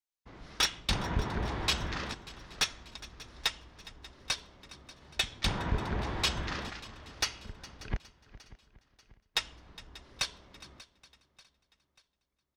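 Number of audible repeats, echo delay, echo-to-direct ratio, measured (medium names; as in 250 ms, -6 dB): 6, 412 ms, -15.5 dB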